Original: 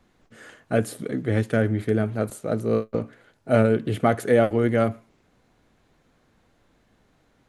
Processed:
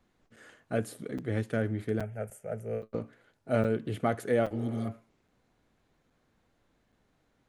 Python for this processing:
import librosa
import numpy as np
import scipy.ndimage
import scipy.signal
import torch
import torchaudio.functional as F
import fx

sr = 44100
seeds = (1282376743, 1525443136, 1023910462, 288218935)

y = fx.fixed_phaser(x, sr, hz=1100.0, stages=6, at=(2.01, 2.83))
y = fx.spec_repair(y, sr, seeds[0], start_s=4.57, length_s=0.28, low_hz=330.0, high_hz=3100.0, source='both')
y = fx.buffer_crackle(y, sr, first_s=0.36, period_s=0.82, block=256, kind='zero')
y = y * librosa.db_to_amplitude(-8.5)